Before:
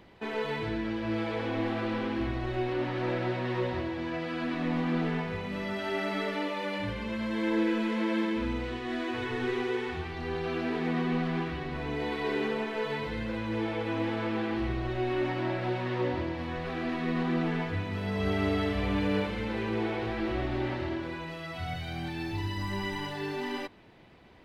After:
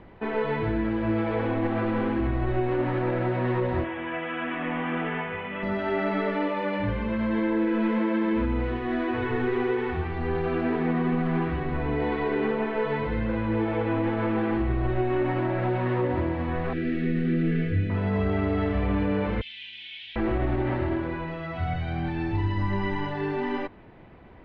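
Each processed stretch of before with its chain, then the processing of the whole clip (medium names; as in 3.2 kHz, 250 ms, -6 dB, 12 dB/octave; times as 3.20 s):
3.84–5.63 s: steep low-pass 3.4 kHz 96 dB/octave + tilt EQ +4 dB/octave + modulation noise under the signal 32 dB
16.73–17.90 s: Butterworth band-stop 920 Hz, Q 0.72 + doubling 31 ms -12 dB
19.41–20.16 s: inverse Chebyshev high-pass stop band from 1.3 kHz + peaking EQ 3.3 kHz +15 dB 0.61 oct
whole clip: low-pass 1.9 kHz 12 dB/octave; bass shelf 63 Hz +8 dB; peak limiter -23 dBFS; trim +6 dB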